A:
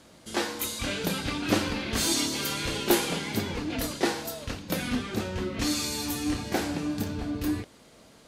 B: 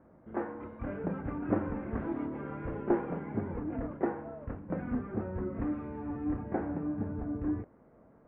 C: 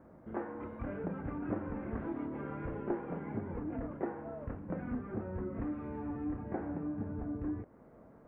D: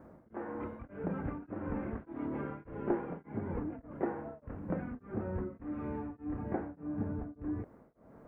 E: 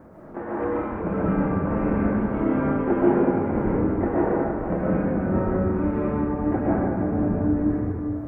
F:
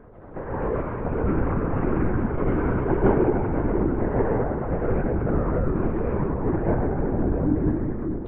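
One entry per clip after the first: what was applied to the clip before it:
Bessel low-pass 990 Hz, order 8; gain -3.5 dB
compressor 2:1, threshold -42 dBFS, peak gain reduction 11 dB; gain +2.5 dB
beating tremolo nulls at 1.7 Hz; gain +3.5 dB
reverb RT60 2.6 s, pre-delay 85 ms, DRR -7.5 dB; gain +7 dB
LPC vocoder at 8 kHz whisper

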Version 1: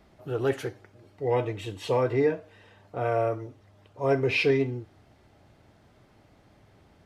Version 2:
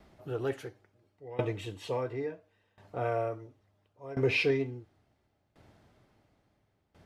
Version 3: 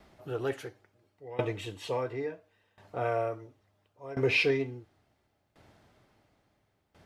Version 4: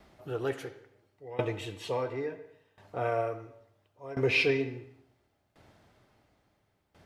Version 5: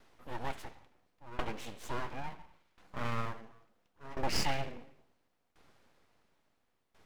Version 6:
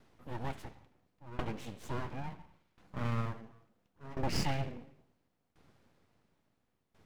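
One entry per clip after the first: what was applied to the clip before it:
dB-ramp tremolo decaying 0.72 Hz, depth 20 dB
low shelf 470 Hz -4.5 dB; gain +3 dB
reverb RT60 0.70 s, pre-delay 68 ms, DRR 12.5 dB
full-wave rectifier; gain -3 dB
bell 130 Hz +10 dB 2.9 oct; gain -4 dB

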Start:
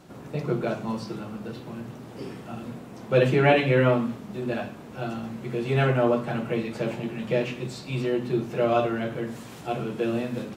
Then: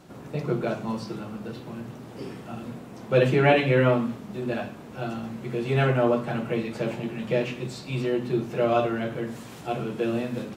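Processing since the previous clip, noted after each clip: nothing audible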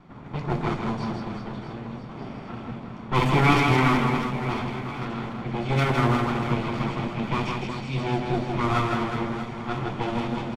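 minimum comb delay 0.89 ms; low-pass opened by the level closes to 2400 Hz, open at -19.5 dBFS; on a send: reverse bouncing-ball echo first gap 0.16 s, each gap 1.3×, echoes 5; on the sum: gain +1 dB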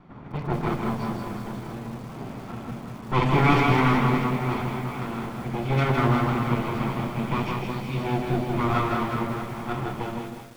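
ending faded out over 0.73 s; high shelf 4600 Hz -10 dB; lo-fi delay 0.192 s, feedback 55%, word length 7-bit, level -9 dB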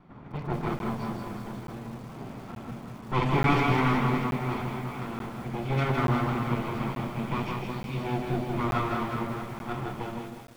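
crackling interface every 0.88 s, samples 512, zero, from 0.79; gain -4 dB

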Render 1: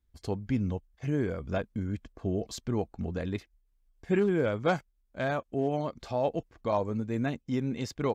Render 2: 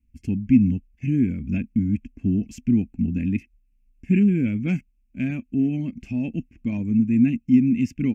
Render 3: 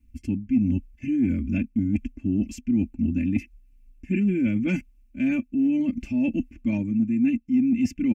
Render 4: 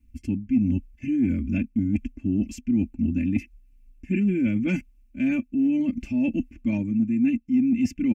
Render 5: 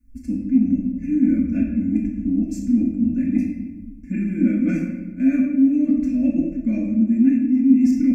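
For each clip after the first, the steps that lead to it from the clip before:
EQ curve 140 Hz 0 dB, 250 Hz +10 dB, 470 Hz -22 dB, 1200 Hz -29 dB, 2600 Hz +5 dB, 3800 Hz -27 dB, 5600 Hz -10 dB; gain +7 dB
comb 3.4 ms, depth 89%; reverse; compressor 4:1, threshold -26 dBFS, peak gain reduction 16 dB; reverse; gain +4.5 dB
nothing audible
fixed phaser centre 600 Hz, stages 8; shoebox room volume 620 m³, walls mixed, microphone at 1.9 m

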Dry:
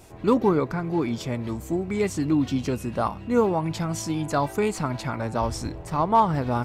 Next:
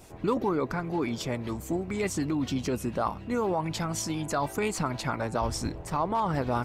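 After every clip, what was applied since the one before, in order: harmonic-percussive split harmonic -7 dB; in parallel at -1 dB: negative-ratio compressor -28 dBFS, ratio -0.5; on the sum: gain -5 dB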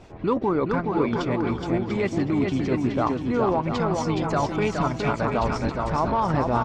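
transient shaper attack -3 dB, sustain -7 dB; air absorption 170 m; bouncing-ball echo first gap 0.42 s, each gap 0.65×, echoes 5; gain +5.5 dB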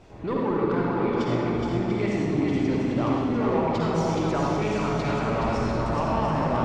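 soft clip -18.5 dBFS, distortion -15 dB; reverb RT60 1.8 s, pre-delay 46 ms, DRR -3 dB; gain -4 dB

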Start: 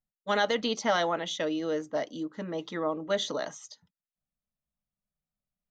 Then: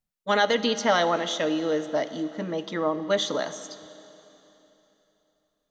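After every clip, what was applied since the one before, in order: Schroeder reverb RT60 3.3 s, combs from 26 ms, DRR 12.5 dB; gain +4.5 dB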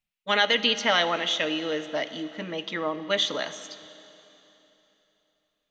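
bell 2600 Hz +14.5 dB 1.1 oct; gain -4.5 dB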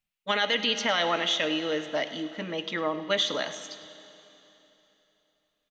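limiter -14.5 dBFS, peak gain reduction 6 dB; echo 0.103 s -16.5 dB

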